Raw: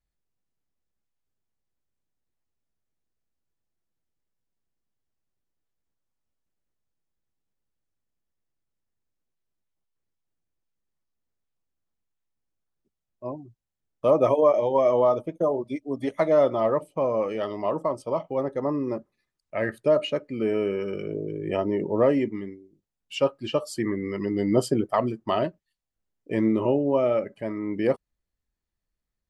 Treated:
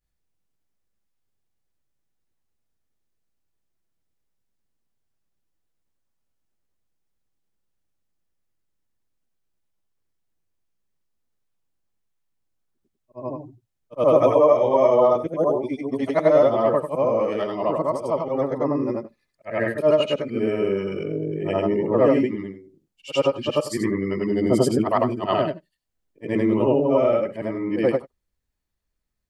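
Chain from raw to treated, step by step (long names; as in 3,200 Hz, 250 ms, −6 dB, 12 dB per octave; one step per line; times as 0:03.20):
every overlapping window played backwards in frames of 205 ms
level +7 dB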